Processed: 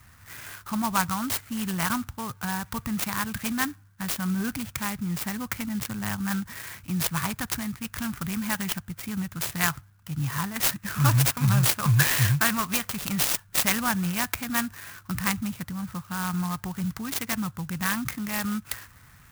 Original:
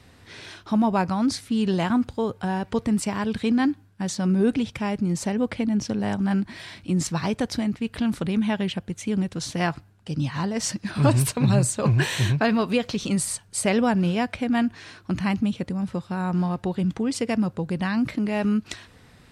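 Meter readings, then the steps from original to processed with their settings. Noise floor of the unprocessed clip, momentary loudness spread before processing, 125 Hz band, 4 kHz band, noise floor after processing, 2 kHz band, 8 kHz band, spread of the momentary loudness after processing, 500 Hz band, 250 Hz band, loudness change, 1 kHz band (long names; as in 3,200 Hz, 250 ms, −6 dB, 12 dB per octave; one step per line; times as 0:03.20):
−53 dBFS, 7 LU, −2.0 dB, +1.5 dB, −54 dBFS, +2.5 dB, +2.5 dB, 12 LU, −13.5 dB, −7.5 dB, −2.5 dB, −1.5 dB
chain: adaptive Wiener filter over 9 samples
drawn EQ curve 130 Hz 0 dB, 480 Hz −20 dB, 1,200 Hz +6 dB
converter with an unsteady clock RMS 0.074 ms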